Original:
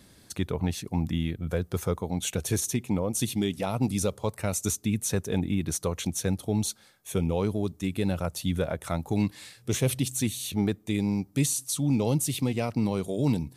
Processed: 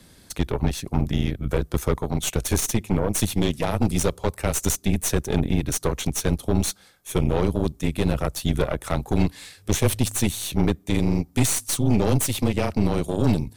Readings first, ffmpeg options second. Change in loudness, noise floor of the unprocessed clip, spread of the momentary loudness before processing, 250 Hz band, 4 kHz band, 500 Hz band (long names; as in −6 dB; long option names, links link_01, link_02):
+4.5 dB, −57 dBFS, 4 LU, +3.5 dB, +5.0 dB, +5.0 dB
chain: -af "afreqshift=-23,aeval=exprs='0.237*(cos(1*acos(clip(val(0)/0.237,-1,1)))-cos(1*PI/2))+0.0376*(cos(6*acos(clip(val(0)/0.237,-1,1)))-cos(6*PI/2))':channel_layout=same,volume=4dB"